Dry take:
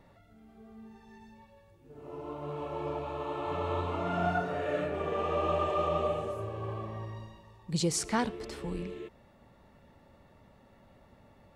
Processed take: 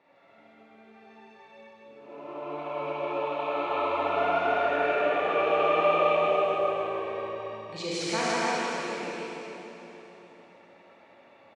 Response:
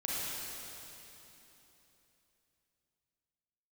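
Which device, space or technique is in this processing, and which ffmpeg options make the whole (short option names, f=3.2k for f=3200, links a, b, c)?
station announcement: -filter_complex "[0:a]highpass=400,lowpass=4.2k,equalizer=f=2.4k:t=o:w=0.21:g=9.5,aecho=1:1:157.4|285.7:0.708|0.631[a];[1:a]atrim=start_sample=2205[b];[a][b]afir=irnorm=-1:irlink=0"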